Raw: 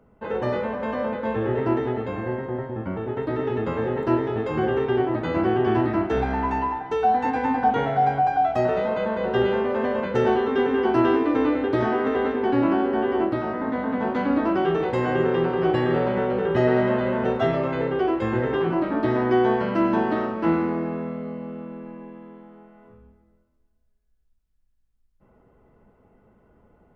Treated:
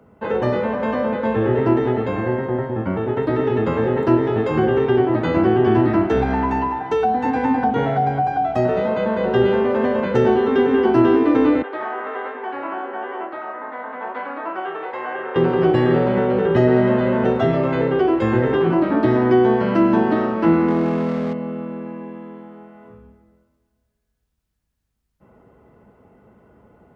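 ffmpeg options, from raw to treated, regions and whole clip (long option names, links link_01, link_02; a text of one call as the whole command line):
ffmpeg -i in.wav -filter_complex "[0:a]asettb=1/sr,asplit=3[link_01][link_02][link_03];[link_01]atrim=end=11.624[link_04];[link_02]atrim=start=11.62:end=15.36,asetpts=PTS-STARTPTS,afade=type=in:duration=0.004:curve=qsin,afade=type=out:start_time=3.736:duration=0.004:curve=qsin,flanger=delay=0.3:depth=9.6:regen=73:speed=1.1:shape=triangular,highpass=760,lowpass=2100[link_05];[link_03]atrim=start=15.356[link_06];[link_04][link_05]acrossfade=duration=0.004:curve1=hsin:curve2=qsin[link_07];[link_07][link_06]acrossfade=duration=0.004:curve1=qsin:curve2=hsin,asettb=1/sr,asplit=3[link_08][link_09][link_10];[link_08]atrim=end=20.684[link_11];[link_09]atrim=start=20.68:end=21.33,asetpts=PTS-STARTPTS,afade=type=in:duration=0.004:curve=qsin,afade=type=out:start_time=0.646:duration=0.004:curve=qsin,aeval=exprs='val(0)+0.5*0.0188*sgn(val(0))':channel_layout=same,lowpass=3500[link_12];[link_10]atrim=start=21.326[link_13];[link_11][link_12]acrossfade=duration=0.004:curve1=hsin:curve2=qsin[link_14];[link_14][link_13]acrossfade=duration=0.004:curve1=qsin:curve2=hsin,highpass=69,acrossover=split=420[link_15][link_16];[link_16]acompressor=threshold=-29dB:ratio=3[link_17];[link_15][link_17]amix=inputs=2:normalize=0,volume=7dB" out.wav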